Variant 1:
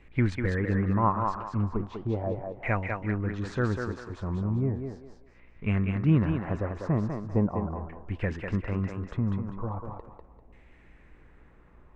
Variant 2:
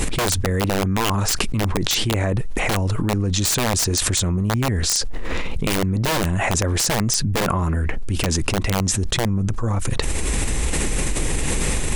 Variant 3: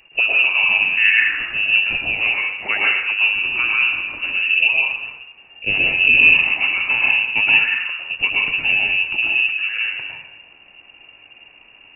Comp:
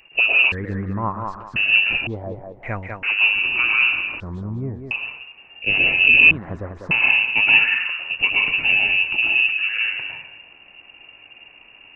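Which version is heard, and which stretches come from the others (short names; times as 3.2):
3
0.52–1.56 from 1
2.07–3.03 from 1
4.2–4.91 from 1
6.31–6.91 from 1
not used: 2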